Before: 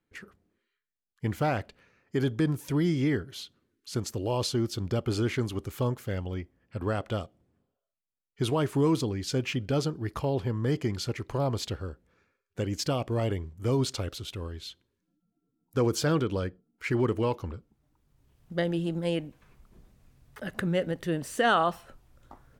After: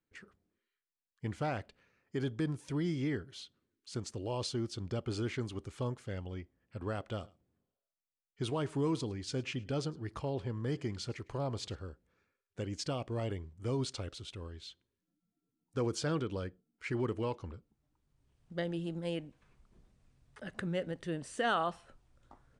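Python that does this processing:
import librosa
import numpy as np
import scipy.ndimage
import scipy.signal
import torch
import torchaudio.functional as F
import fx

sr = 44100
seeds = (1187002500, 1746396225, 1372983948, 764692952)

y = fx.echo_single(x, sr, ms=106, db=-23.0, at=(7.11, 11.79))
y = scipy.signal.sosfilt(scipy.signal.cheby1(4, 1.0, 9300.0, 'lowpass', fs=sr, output='sos'), y)
y = y * librosa.db_to_amplitude(-7.0)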